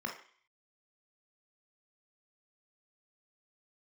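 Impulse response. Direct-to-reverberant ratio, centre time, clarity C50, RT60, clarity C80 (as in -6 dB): 1.0 dB, 22 ms, 7.5 dB, 0.50 s, 12.0 dB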